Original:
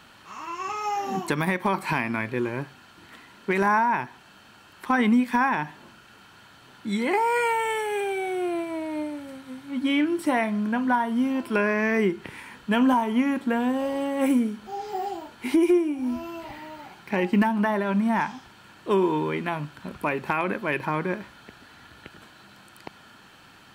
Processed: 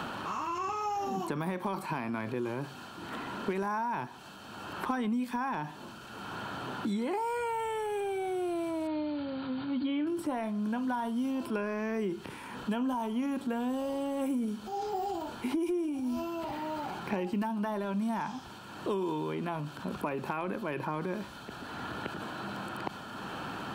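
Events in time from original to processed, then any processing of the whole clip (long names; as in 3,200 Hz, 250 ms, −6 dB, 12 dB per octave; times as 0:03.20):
0:08.87–0:10.07: linear-phase brick-wall low-pass 4,800 Hz
whole clip: transient designer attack −2 dB, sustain +6 dB; parametric band 2,000 Hz −10.5 dB 0.58 octaves; multiband upward and downward compressor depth 100%; level −8.5 dB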